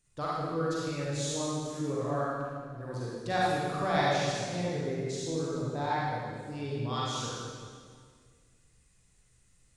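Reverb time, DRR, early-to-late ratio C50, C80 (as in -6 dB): 1.9 s, -7.5 dB, -4.5 dB, -1.5 dB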